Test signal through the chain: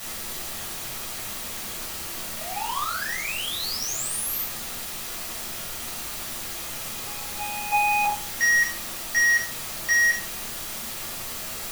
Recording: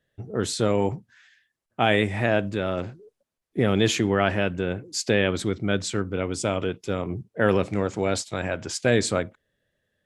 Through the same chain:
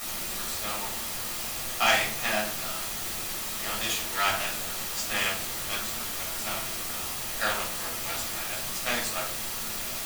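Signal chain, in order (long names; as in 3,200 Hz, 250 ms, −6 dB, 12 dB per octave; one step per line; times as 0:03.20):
low shelf with overshoot 590 Hz −11.5 dB, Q 1.5
power curve on the samples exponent 2
spectral tilt +2 dB per octave
bit-depth reduction 6 bits, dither triangular
rectangular room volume 500 cubic metres, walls furnished, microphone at 6.4 metres
level −5.5 dB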